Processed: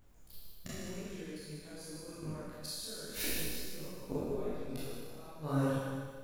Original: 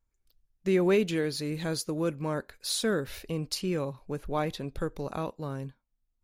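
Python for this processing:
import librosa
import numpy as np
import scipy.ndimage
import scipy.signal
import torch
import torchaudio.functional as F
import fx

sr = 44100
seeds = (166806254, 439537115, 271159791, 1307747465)

p1 = fx.high_shelf(x, sr, hz=8000.0, db=9.5)
p2 = fx.level_steps(p1, sr, step_db=16)
p3 = fx.gate_flip(p2, sr, shuts_db=-36.0, range_db=-30)
p4 = fx.rev_schroeder(p3, sr, rt60_s=1.5, comb_ms=26, drr_db=-9.0)
p5 = fx.dmg_noise_colour(p4, sr, seeds[0], colour='brown', level_db=-68.0)
p6 = p5 + fx.echo_feedback(p5, sr, ms=151, feedback_pct=49, wet_db=-7.5, dry=0)
p7 = fx.detune_double(p6, sr, cents=30)
y = F.gain(torch.from_numpy(p7), 11.0).numpy()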